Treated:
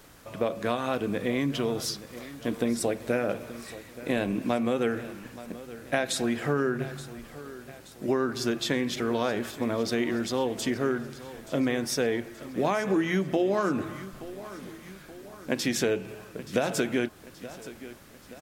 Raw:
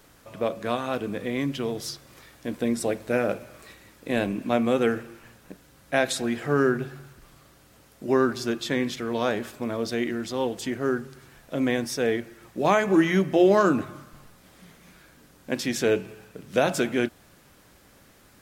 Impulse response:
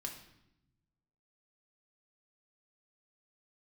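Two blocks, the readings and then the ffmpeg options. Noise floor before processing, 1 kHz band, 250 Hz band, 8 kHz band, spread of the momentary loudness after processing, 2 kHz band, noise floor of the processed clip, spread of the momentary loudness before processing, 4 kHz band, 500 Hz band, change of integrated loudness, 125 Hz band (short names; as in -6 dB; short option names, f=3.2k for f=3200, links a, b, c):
-56 dBFS, -4.0 dB, -2.5 dB, +0.5 dB, 16 LU, -3.0 dB, -50 dBFS, 13 LU, 0.0 dB, -3.5 dB, -3.0 dB, -1.5 dB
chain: -filter_complex "[0:a]acompressor=threshold=-25dB:ratio=6,asplit=2[a][b];[b]aecho=0:1:876|1752|2628|3504|4380:0.158|0.0808|0.0412|0.021|0.0107[c];[a][c]amix=inputs=2:normalize=0,volume=2.5dB"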